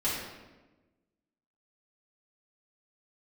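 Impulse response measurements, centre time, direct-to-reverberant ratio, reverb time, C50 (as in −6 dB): 70 ms, −10.0 dB, 1.2 s, 0.5 dB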